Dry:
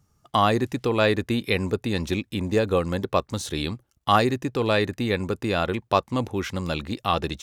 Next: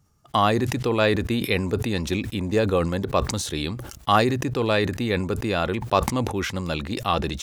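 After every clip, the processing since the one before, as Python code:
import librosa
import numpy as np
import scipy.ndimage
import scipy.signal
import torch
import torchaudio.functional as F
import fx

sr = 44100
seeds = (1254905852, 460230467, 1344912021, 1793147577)

y = fx.sustainer(x, sr, db_per_s=59.0)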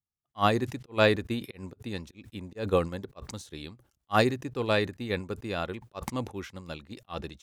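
y = fx.auto_swell(x, sr, attack_ms=125.0)
y = fx.upward_expand(y, sr, threshold_db=-40.0, expansion=2.5)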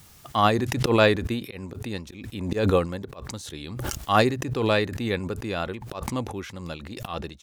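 y = fx.wow_flutter(x, sr, seeds[0], rate_hz=2.1, depth_cents=26.0)
y = fx.pre_swell(y, sr, db_per_s=40.0)
y = F.gain(torch.from_numpy(y), 3.0).numpy()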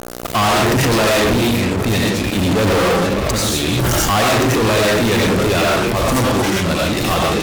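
y = fx.rev_freeverb(x, sr, rt60_s=0.5, hf_ratio=0.55, predelay_ms=50, drr_db=-3.5)
y = fx.dmg_buzz(y, sr, base_hz=60.0, harmonics=12, level_db=-46.0, tilt_db=-1, odd_only=False)
y = fx.fuzz(y, sr, gain_db=37.0, gate_db=-39.0)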